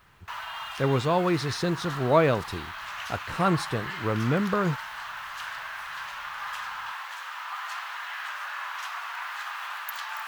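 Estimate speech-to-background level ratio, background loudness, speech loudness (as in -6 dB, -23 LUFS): 9.0 dB, -35.5 LUFS, -26.5 LUFS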